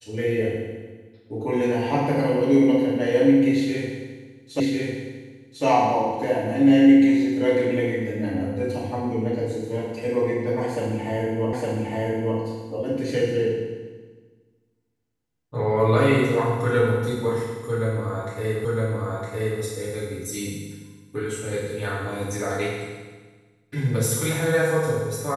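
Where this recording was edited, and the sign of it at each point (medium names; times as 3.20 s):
4.60 s: repeat of the last 1.05 s
11.53 s: repeat of the last 0.86 s
18.65 s: repeat of the last 0.96 s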